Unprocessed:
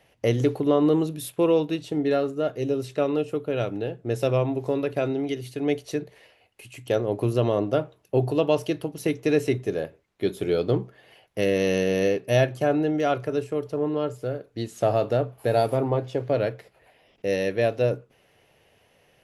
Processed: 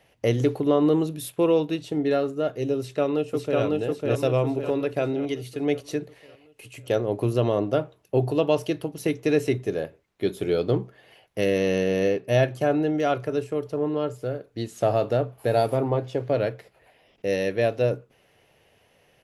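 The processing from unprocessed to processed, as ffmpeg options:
-filter_complex "[0:a]asplit=2[a][b];[b]afade=t=in:st=2.78:d=0.01,afade=t=out:st=3.6:d=0.01,aecho=0:1:550|1100|1650|2200|2750|3300|3850:0.841395|0.420698|0.210349|0.105174|0.0525872|0.0262936|0.0131468[c];[a][c]amix=inputs=2:normalize=0,asettb=1/sr,asplit=3[d][e][f];[d]atrim=end=11.594[g];[e]atrim=start=11.59:end=12.43,asetpts=PTS-STARTPTS,afade=t=in:d=0.004:c=qsin,afade=t=out:st=0.836:d=0.004:c=qsin,highshelf=f=4k:g=-5.5[h];[f]atrim=start=12.426[i];[g][h]acrossfade=d=0.004:c1=hsin:c2=qsin[j];[j][i]acrossfade=d=0.004:c1=qsin:c2=hsin"

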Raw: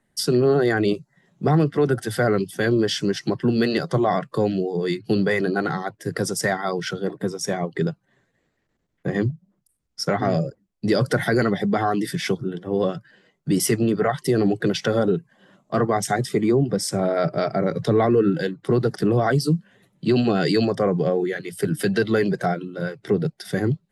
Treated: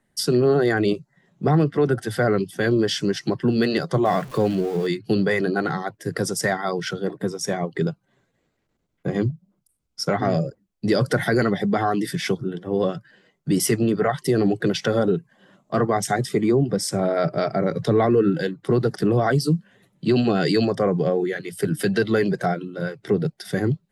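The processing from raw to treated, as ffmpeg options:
-filter_complex "[0:a]asettb=1/sr,asplit=3[a][b][c];[a]atrim=end=0.934[d];[b]atrim=start=0.93:end=2.65,asetpts=PTS-STARTPTS,afade=t=in:d=0.004:c=qsin,afade=t=out:st=1.716:d=0.004:c=qsin,highshelf=f=5k:g=-4.5[e];[c]atrim=start=2.646[f];[d][e]acrossfade=d=0.004:c1=hsin:c2=qsin[g];[g][f]acrossfade=d=0.004:c1=qsin:c2=hsin,asettb=1/sr,asplit=3[h][i][j];[h]atrim=end=4.054[k];[i]atrim=start=4.05:end=4.87,asetpts=PTS-STARTPTS,afade=t=in:d=0.004:c=qsin,afade=t=out:st=0.816:d=0.004:c=qsin,aeval=exprs='val(0)+0.5*0.0188*sgn(val(0))':c=same[l];[j]atrim=start=4.866[m];[k][l]acrossfade=d=0.004:c1=hsin:c2=qsin[n];[n][m]acrossfade=d=0.004:c1=qsin:c2=hsin,asettb=1/sr,asplit=3[o][p][q];[o]atrim=end=7.804[r];[p]atrim=start=7.8:end=10.13,asetpts=PTS-STARTPTS,afade=t=in:d=0.004:c=qsin,afade=t=out:st=2.326:d=0.004:c=qsin,bandreject=f=1.8k:w=6.8[s];[q]atrim=start=10.126[t];[r][s]acrossfade=d=0.004:c1=hsin:c2=qsin[u];[u][t]acrossfade=d=0.004:c1=qsin:c2=hsin"

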